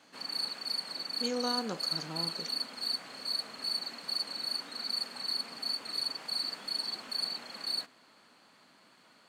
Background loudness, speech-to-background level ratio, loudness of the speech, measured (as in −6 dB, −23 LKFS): −33.5 LKFS, −4.5 dB, −38.0 LKFS